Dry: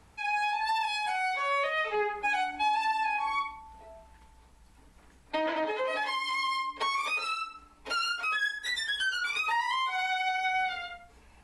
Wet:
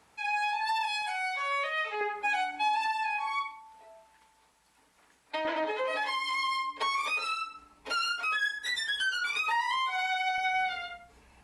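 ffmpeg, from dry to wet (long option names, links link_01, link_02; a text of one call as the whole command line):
ffmpeg -i in.wav -af "asetnsamples=nb_out_samples=441:pad=0,asendcmd='1.02 highpass f 940;2.01 highpass f 350;2.86 highpass f 760;5.45 highpass f 210;6.86 highpass f 96;9.77 highpass f 240;10.38 highpass f 57',highpass=frequency=430:poles=1" out.wav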